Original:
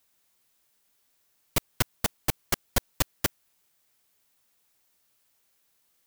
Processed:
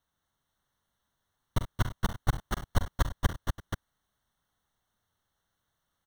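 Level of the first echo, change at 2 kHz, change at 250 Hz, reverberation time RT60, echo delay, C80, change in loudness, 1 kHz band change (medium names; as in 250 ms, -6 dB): -10.0 dB, -4.0 dB, -0.5 dB, no reverb, 45 ms, no reverb, -4.0 dB, -0.5 dB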